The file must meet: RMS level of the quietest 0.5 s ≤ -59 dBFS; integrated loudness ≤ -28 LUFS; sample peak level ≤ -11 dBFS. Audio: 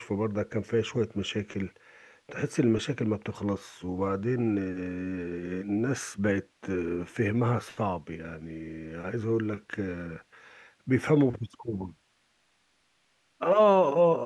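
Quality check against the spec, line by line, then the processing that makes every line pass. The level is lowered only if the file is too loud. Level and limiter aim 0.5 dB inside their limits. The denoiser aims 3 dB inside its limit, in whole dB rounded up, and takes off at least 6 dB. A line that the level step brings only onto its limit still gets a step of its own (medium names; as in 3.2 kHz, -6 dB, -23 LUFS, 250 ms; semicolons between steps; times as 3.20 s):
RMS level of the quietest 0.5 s -70 dBFS: pass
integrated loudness -29.0 LUFS: pass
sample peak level -10.5 dBFS: fail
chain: peak limiter -11.5 dBFS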